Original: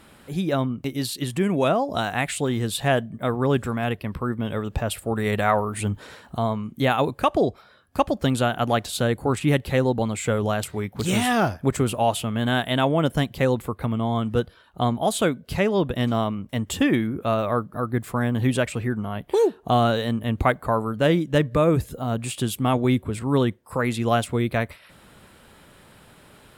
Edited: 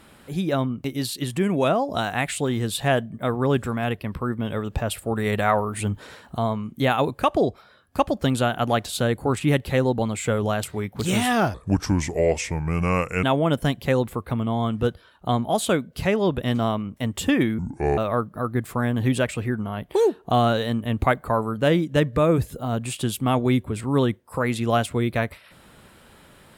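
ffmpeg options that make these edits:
-filter_complex "[0:a]asplit=5[a][b][c][d][e];[a]atrim=end=11.544[f];[b]atrim=start=11.54:end=12.76,asetpts=PTS-STARTPTS,asetrate=31752,aresample=44100[g];[c]atrim=start=12.756:end=17.114[h];[d]atrim=start=17.11:end=17.36,asetpts=PTS-STARTPTS,asetrate=28224,aresample=44100[i];[e]atrim=start=17.356[j];[f][g]acrossfade=d=0.004:c1=hsin:c2=hsin[k];[k][h]acrossfade=d=0.004:c1=hsin:c2=hsin[l];[l][i]acrossfade=d=0.004:c1=hsin:c2=hsin[m];[m][j]acrossfade=d=0.004:c1=hsin:c2=hsin"

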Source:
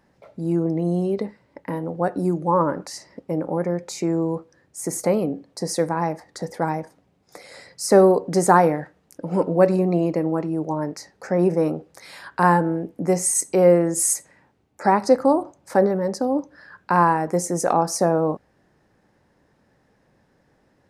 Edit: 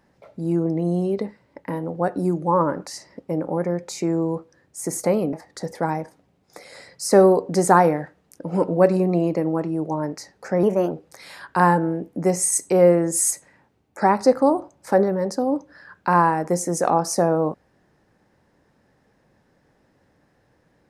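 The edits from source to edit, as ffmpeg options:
-filter_complex "[0:a]asplit=4[a][b][c][d];[a]atrim=end=5.332[e];[b]atrim=start=6.118:end=11.424[f];[c]atrim=start=11.42:end=11.74,asetpts=PTS-STARTPTS,asetrate=50274,aresample=44100[g];[d]atrim=start=11.736[h];[e][f]acrossfade=d=0.004:c1=hsin:c2=hsin[i];[i][g]acrossfade=d=0.004:c1=hsin:c2=hsin[j];[j][h]acrossfade=d=0.004:c1=hsin:c2=hsin"

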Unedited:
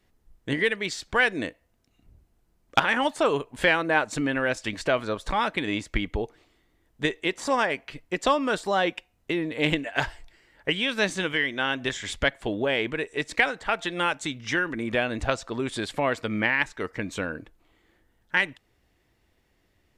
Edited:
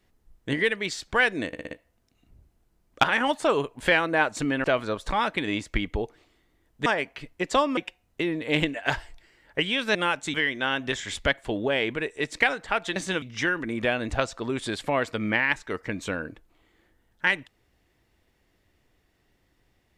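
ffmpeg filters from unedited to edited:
-filter_complex "[0:a]asplit=12[a][b][c][d][e][f][g][h][i][j][k][l];[a]atrim=end=1.532[m];[b]atrim=start=1.468:end=1.532[n];[c]atrim=start=1.468:end=1.532[o];[d]atrim=start=1.468:end=1.532[p];[e]atrim=start=1.468:end=4.402[q];[f]atrim=start=4.838:end=7.062[r];[g]atrim=start=7.578:end=8.492[s];[h]atrim=start=8.868:end=11.052[t];[i]atrim=start=13.928:end=14.322[u];[j]atrim=start=11.308:end=13.932[v];[k]atrim=start=11.048:end=11.312[w];[l]atrim=start=14.318[x];[m][n]acrossfade=d=0.004:c1=hsin:c2=hsin[y];[y][o]acrossfade=d=0.004:c1=hsin:c2=hsin[z];[z][p]acrossfade=d=0.004:c1=hsin:c2=hsin[aa];[aa][q]acrossfade=d=0.004:c1=hsin:c2=hsin[ab];[ab][r]acrossfade=d=0.004:c1=hsin:c2=hsin[ac];[ac][s]acrossfade=d=0.004:c1=hsin:c2=hsin[ad];[ad][t]acrossfade=d=0.004:c1=hsin:c2=hsin[ae];[ae][u]acrossfade=d=0.004:c1=hsin:c2=hsin[af];[af][v]acrossfade=d=0.004:c1=hsin:c2=hsin[ag];[ag][w]acrossfade=d=0.004:c1=hsin:c2=hsin[ah];[ah][x]acrossfade=d=0.004:c1=hsin:c2=hsin"

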